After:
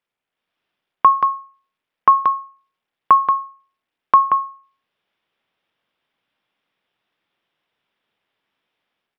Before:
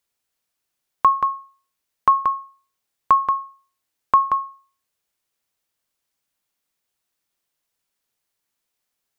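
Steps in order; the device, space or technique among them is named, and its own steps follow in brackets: Bluetooth headset (high-pass 130 Hz 12 dB/octave; level rider gain up to 9.5 dB; resampled via 8 kHz; SBC 64 kbps 44.1 kHz)

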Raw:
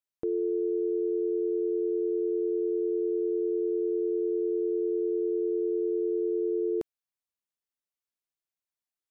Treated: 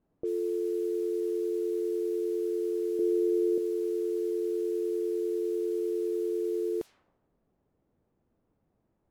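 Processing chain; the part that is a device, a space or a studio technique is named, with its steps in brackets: 2.99–3.58 s: tilt shelf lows +10 dB, about 640 Hz; cassette deck with a dynamic noise filter (white noise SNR 27 dB; level-controlled noise filter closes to 330 Hz, open at -26 dBFS); trim -2 dB

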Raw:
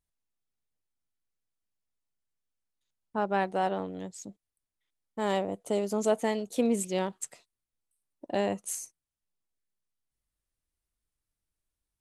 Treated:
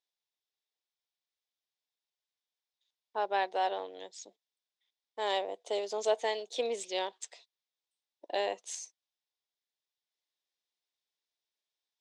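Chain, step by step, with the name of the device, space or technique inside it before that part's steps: phone speaker on a table (cabinet simulation 440–6500 Hz, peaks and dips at 560 Hz -3 dB, 1.3 kHz -9 dB, 3.6 kHz +9 dB, 5.2 kHz +4 dB)

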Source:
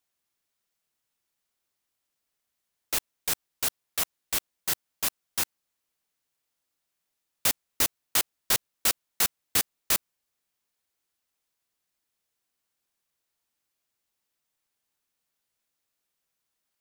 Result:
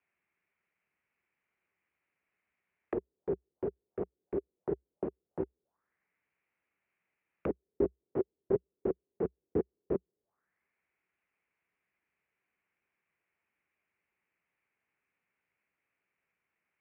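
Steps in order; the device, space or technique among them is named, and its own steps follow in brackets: envelope filter bass rig (touch-sensitive low-pass 410–2400 Hz down, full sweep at -34.5 dBFS; cabinet simulation 60–2300 Hz, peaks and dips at 63 Hz +5 dB, 180 Hz +5 dB, 390 Hz +5 dB)

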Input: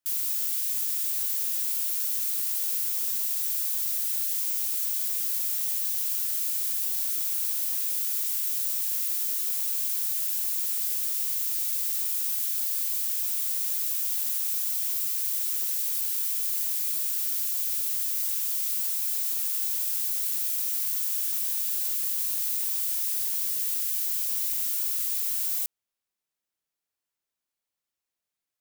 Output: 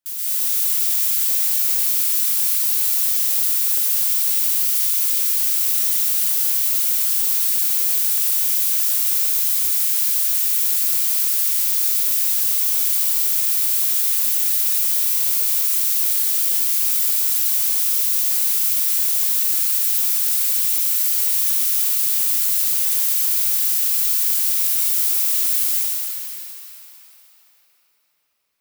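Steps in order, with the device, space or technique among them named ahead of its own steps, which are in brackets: cathedral (reverberation RT60 4.9 s, pre-delay 113 ms, DRR -11 dB)

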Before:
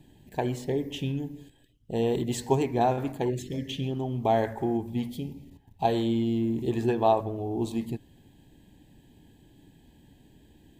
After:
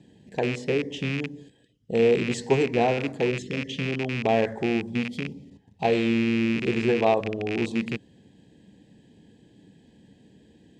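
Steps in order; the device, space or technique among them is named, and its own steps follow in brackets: car door speaker with a rattle (rattle on loud lows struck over -34 dBFS, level -21 dBFS; cabinet simulation 91–8200 Hz, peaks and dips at 200 Hz +8 dB, 480 Hz +9 dB, 890 Hz -4 dB, 1.9 kHz +3 dB, 5.1 kHz +4 dB)

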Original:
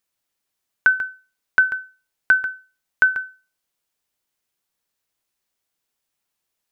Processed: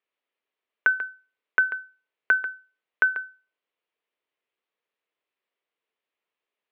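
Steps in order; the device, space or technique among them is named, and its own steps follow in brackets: phone earpiece (cabinet simulation 360–3000 Hz, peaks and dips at 440 Hz +5 dB, 810 Hz -5 dB, 1.5 kHz -5 dB)

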